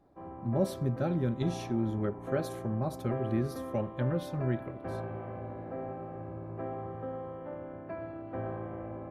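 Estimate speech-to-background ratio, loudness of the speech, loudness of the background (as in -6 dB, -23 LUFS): 7.5 dB, -33.5 LUFS, -41.0 LUFS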